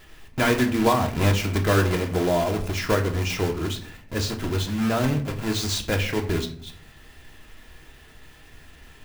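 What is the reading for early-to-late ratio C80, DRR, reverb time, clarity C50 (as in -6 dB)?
15.0 dB, 3.0 dB, 0.55 s, 12.0 dB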